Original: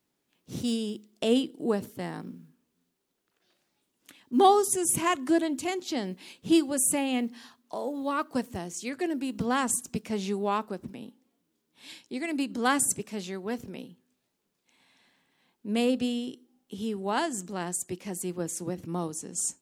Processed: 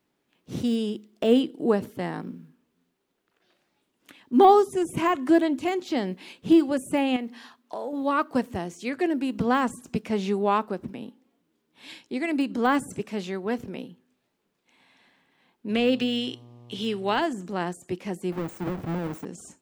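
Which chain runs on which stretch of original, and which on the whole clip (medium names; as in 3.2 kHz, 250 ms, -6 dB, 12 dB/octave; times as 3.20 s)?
7.16–7.93 s: bass shelf 230 Hz -6.5 dB + compression 2.5:1, threshold -35 dBFS
15.68–17.20 s: frequency weighting D + mains buzz 120 Hz, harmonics 10, -53 dBFS -8 dB/octave
18.32–19.25 s: square wave that keeps the level + treble shelf 12 kHz +11 dB + compression, threshold -29 dBFS
whole clip: de-esser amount 90%; tone controls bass -2 dB, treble -9 dB; trim +5.5 dB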